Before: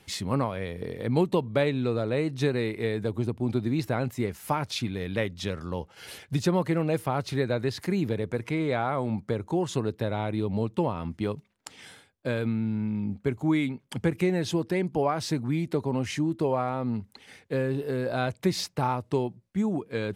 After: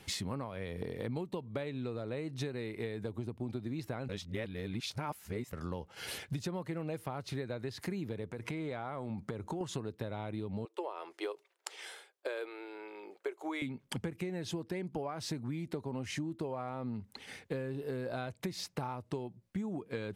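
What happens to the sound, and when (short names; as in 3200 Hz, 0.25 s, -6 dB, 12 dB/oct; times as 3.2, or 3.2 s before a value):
4.09–5.53 reverse
8.32–9.61 compressor 3:1, threshold -34 dBFS
10.65–13.62 elliptic high-pass 360 Hz
whole clip: compressor 12:1, threshold -36 dBFS; gain +1.5 dB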